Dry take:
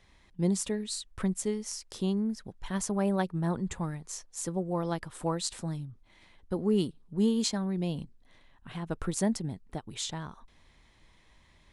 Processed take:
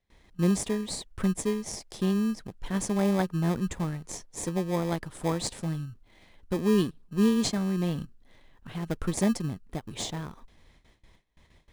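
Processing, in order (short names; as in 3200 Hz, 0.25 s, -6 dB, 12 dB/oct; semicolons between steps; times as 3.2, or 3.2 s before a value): in parallel at -5.5 dB: sample-and-hold 31×; on the sum: gate with hold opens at -48 dBFS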